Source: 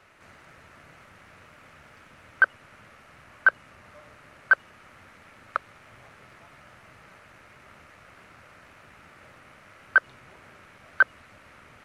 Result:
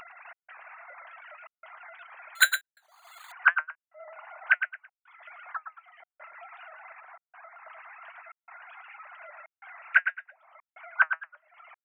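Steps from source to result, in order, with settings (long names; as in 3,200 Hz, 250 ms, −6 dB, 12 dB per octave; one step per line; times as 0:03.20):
three sine waves on the formant tracks
reverb reduction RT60 0.81 s
flanger 1.1 Hz, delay 5.4 ms, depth 2.7 ms, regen +71%
repeating echo 110 ms, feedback 23%, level −8.5 dB
0:02.35–0:03.32: bad sample-rate conversion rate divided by 8×, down none, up hold
0:04.00–0:04.49: parametric band 760 Hz +7.5 dB 1.9 octaves
0:07.00–0:07.70: Bessel low-pass filter 1,200 Hz, order 2
upward compression, threshold −34 dBFS
gate pattern "xxxx..xxxxxxxx" 184 BPM −60 dB
wow of a warped record 78 rpm, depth 100 cents
level +2.5 dB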